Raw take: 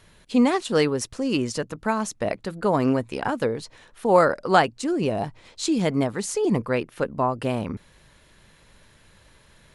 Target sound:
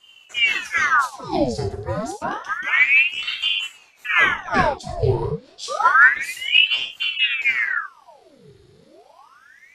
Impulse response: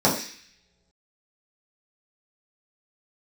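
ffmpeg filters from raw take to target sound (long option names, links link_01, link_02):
-filter_complex "[0:a]equalizer=frequency=125:width_type=o:width=1:gain=9,equalizer=frequency=250:width_type=o:width=1:gain=-9,equalizer=frequency=500:width_type=o:width=1:gain=-10,equalizer=frequency=1000:width_type=o:width=1:gain=-7[link_01];[1:a]atrim=start_sample=2205,afade=type=out:start_time=0.16:duration=0.01,atrim=end_sample=7497,asetrate=37926,aresample=44100[link_02];[link_01][link_02]afir=irnorm=-1:irlink=0,aeval=exprs='val(0)*sin(2*PI*1600*n/s+1600*0.85/0.29*sin(2*PI*0.29*n/s))':channel_layout=same,volume=-14dB"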